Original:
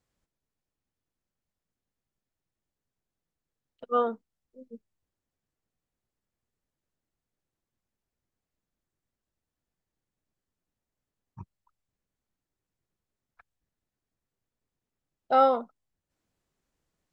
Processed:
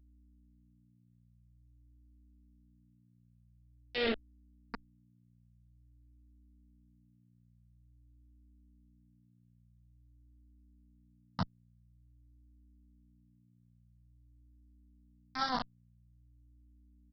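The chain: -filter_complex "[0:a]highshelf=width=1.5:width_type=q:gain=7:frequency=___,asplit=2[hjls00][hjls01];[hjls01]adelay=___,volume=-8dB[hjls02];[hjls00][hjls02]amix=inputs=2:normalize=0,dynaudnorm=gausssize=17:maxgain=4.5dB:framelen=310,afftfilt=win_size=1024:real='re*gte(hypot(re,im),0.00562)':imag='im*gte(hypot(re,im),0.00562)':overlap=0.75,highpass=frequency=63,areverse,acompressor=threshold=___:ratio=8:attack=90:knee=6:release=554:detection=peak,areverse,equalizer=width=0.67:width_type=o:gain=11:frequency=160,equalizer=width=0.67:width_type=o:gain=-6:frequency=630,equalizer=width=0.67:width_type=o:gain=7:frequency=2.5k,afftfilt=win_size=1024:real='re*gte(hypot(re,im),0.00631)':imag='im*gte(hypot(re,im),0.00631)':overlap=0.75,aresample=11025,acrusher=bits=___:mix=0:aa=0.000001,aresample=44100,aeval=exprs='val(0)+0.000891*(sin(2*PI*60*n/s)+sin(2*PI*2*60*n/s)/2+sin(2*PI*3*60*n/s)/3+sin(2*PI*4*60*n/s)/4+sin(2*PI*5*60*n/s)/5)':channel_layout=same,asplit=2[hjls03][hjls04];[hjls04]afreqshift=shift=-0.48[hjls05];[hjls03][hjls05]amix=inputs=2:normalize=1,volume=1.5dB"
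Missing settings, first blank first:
2.6k, 12, -34dB, 4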